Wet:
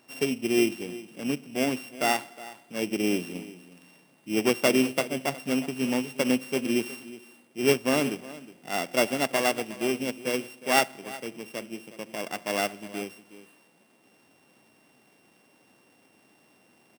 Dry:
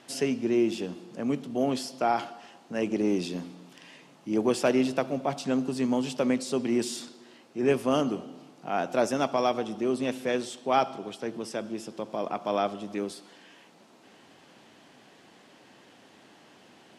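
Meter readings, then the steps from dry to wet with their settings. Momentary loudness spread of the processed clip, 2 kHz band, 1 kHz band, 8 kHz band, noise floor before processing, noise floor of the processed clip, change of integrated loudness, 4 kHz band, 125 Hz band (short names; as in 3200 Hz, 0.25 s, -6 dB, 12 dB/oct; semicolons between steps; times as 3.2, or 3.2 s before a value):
15 LU, +7.5 dB, -1.5 dB, +6.0 dB, -56 dBFS, -62 dBFS, +1.0 dB, +5.5 dB, -1.0 dB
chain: sample sorter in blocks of 16 samples; echo 0.364 s -12 dB; upward expander 1.5:1, over -37 dBFS; gain +2.5 dB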